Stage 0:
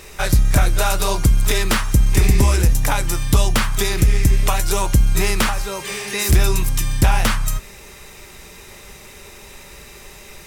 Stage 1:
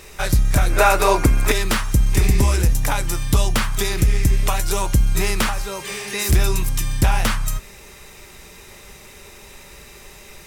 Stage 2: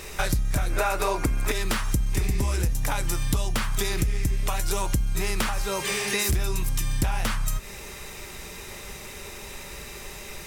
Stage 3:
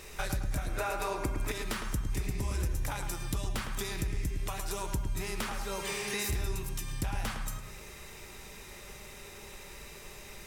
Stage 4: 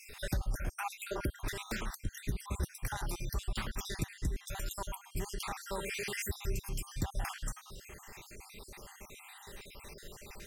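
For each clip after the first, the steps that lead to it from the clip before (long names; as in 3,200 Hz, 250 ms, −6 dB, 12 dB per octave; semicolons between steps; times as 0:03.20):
gain on a spectral selection 0:00.70–0:01.52, 230–2,700 Hz +9 dB; level −2 dB
downward compressor 6 to 1, threshold −25 dBFS, peak gain reduction 14.5 dB; level +3 dB
feedback echo with a low-pass in the loop 108 ms, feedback 50%, low-pass 2,900 Hz, level −6 dB; level −9 dB
time-frequency cells dropped at random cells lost 55%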